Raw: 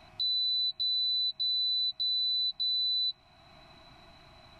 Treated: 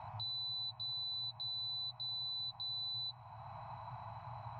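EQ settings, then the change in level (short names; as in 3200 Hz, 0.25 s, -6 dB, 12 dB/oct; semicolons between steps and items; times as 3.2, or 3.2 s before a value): double band-pass 320 Hz, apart 3 oct; +18.0 dB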